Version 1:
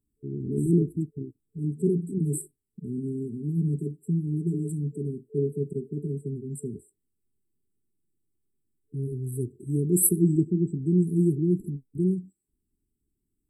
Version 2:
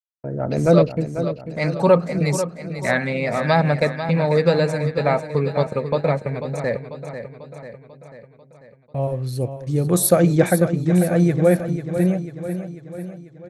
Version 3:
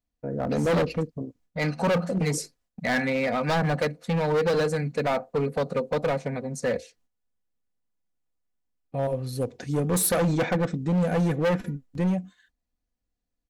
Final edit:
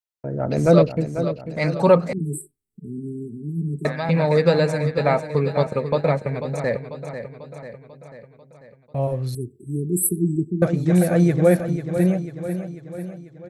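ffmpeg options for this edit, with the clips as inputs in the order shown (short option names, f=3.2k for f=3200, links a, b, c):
-filter_complex "[0:a]asplit=2[a][b];[1:a]asplit=3[c][d][e];[c]atrim=end=2.132[f];[a]atrim=start=2.128:end=3.852[g];[d]atrim=start=3.848:end=9.352[h];[b]atrim=start=9.348:end=10.622[i];[e]atrim=start=10.618[j];[f][g]acrossfade=d=0.004:c1=hsin:c2=hsin[k];[k][h]acrossfade=d=0.004:c1=hsin:c2=hsin[l];[l][i]acrossfade=d=0.004:c1=hsin:c2=hsin[m];[m][j]acrossfade=d=0.004:c1=hsin:c2=hsin"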